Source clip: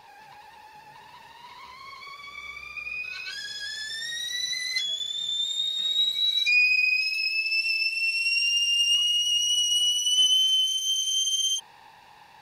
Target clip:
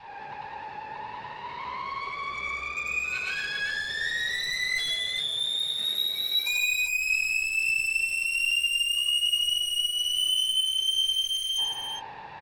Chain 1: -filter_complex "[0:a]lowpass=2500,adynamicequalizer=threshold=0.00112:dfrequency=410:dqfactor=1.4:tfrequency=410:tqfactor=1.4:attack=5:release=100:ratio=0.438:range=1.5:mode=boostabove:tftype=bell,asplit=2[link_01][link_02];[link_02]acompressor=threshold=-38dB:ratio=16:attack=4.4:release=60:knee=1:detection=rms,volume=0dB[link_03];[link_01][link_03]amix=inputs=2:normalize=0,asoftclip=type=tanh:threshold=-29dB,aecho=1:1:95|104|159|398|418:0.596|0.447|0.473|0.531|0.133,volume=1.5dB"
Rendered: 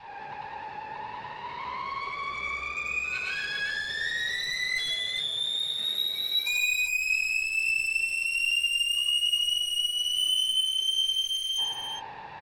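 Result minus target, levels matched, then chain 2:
downward compressor: peak gain reduction +7 dB
-filter_complex "[0:a]lowpass=2500,adynamicequalizer=threshold=0.00112:dfrequency=410:dqfactor=1.4:tfrequency=410:tqfactor=1.4:attack=5:release=100:ratio=0.438:range=1.5:mode=boostabove:tftype=bell,asplit=2[link_01][link_02];[link_02]acompressor=threshold=-30.5dB:ratio=16:attack=4.4:release=60:knee=1:detection=rms,volume=0dB[link_03];[link_01][link_03]amix=inputs=2:normalize=0,asoftclip=type=tanh:threshold=-29dB,aecho=1:1:95|104|159|398|418:0.596|0.447|0.473|0.531|0.133,volume=1.5dB"

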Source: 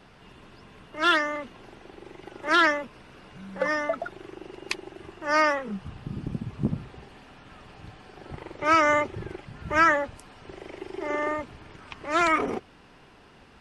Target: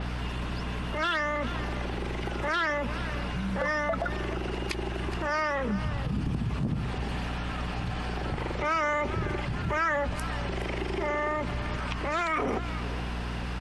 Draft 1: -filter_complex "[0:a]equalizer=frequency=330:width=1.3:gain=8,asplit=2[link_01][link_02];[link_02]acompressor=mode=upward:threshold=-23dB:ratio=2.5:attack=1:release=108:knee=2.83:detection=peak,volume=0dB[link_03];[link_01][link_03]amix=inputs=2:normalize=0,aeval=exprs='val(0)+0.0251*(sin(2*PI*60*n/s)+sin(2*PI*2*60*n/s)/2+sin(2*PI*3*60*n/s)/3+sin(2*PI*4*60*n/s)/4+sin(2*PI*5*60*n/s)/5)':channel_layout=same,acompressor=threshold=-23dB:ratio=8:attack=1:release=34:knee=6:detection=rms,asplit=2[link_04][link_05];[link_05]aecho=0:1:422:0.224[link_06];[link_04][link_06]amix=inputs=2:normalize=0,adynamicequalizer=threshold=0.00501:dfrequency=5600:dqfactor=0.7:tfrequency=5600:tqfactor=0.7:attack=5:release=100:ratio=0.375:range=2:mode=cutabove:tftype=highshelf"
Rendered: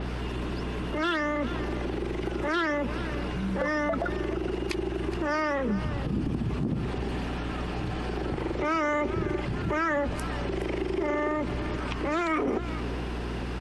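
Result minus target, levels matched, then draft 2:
250 Hz band +3.5 dB
-filter_complex "[0:a]equalizer=frequency=330:width=1.3:gain=-4,asplit=2[link_01][link_02];[link_02]acompressor=mode=upward:threshold=-23dB:ratio=2.5:attack=1:release=108:knee=2.83:detection=peak,volume=0dB[link_03];[link_01][link_03]amix=inputs=2:normalize=0,aeval=exprs='val(0)+0.0251*(sin(2*PI*60*n/s)+sin(2*PI*2*60*n/s)/2+sin(2*PI*3*60*n/s)/3+sin(2*PI*4*60*n/s)/4+sin(2*PI*5*60*n/s)/5)':channel_layout=same,acompressor=threshold=-23dB:ratio=8:attack=1:release=34:knee=6:detection=rms,asplit=2[link_04][link_05];[link_05]aecho=0:1:422:0.224[link_06];[link_04][link_06]amix=inputs=2:normalize=0,adynamicequalizer=threshold=0.00501:dfrequency=5600:dqfactor=0.7:tfrequency=5600:tqfactor=0.7:attack=5:release=100:ratio=0.375:range=2:mode=cutabove:tftype=highshelf"

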